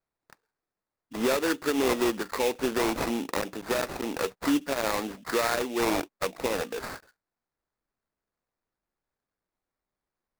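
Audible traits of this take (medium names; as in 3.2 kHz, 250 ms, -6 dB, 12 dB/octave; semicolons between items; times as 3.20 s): aliases and images of a low sample rate 3.1 kHz, jitter 20%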